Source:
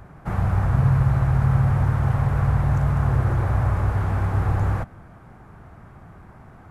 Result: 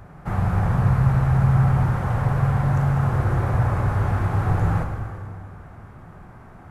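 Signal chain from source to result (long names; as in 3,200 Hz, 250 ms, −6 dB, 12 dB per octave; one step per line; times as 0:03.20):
dense smooth reverb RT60 2.3 s, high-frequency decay 0.85×, DRR 2.5 dB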